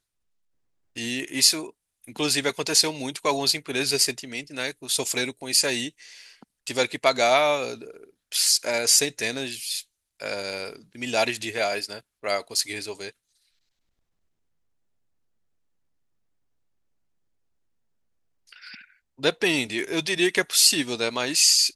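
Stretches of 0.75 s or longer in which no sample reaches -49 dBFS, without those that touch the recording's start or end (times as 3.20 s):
13.11–18.48 s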